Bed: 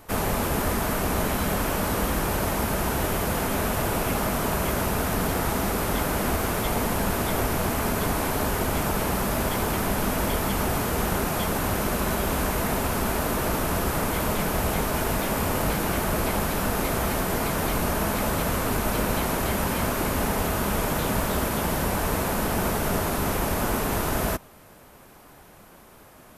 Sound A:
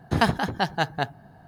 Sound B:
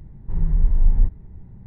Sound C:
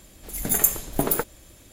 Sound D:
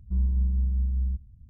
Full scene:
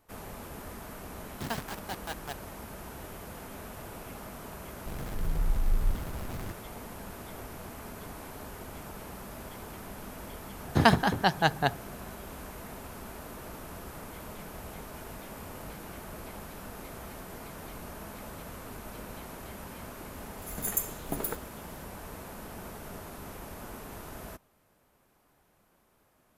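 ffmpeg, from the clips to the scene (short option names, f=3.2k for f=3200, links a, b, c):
-filter_complex "[1:a]asplit=2[a][b];[0:a]volume=-18dB[c];[a]acrusher=bits=3:mix=0:aa=0.000001[d];[2:a]aeval=exprs='val(0)+0.5*0.0891*sgn(val(0))':c=same[e];[b]highpass=58[f];[d]atrim=end=1.47,asetpts=PTS-STARTPTS,volume=-15dB,afade=t=in:d=0.004:c=hsin,afade=t=out:st=1.466:d=0.004:c=hsin,adelay=1290[g];[e]atrim=end=1.66,asetpts=PTS-STARTPTS,volume=-12dB,afade=t=in:d=0.004:c=hsin,afade=t=out:st=1.656:d=0.004:c=hsin,adelay=4860[h];[f]atrim=end=1.47,asetpts=PTS-STARTPTS,afade=t=in:d=0.004:c=hsin,afade=t=out:st=1.466:d=0.004:c=hsin,adelay=10640[i];[3:a]atrim=end=1.72,asetpts=PTS-STARTPTS,volume=-11dB,afade=t=in:d=0.004:c=hsin,afade=t=out:st=1.716:d=0.004:c=hsin,adelay=20130[j];[c][g][h][i][j]amix=inputs=5:normalize=0"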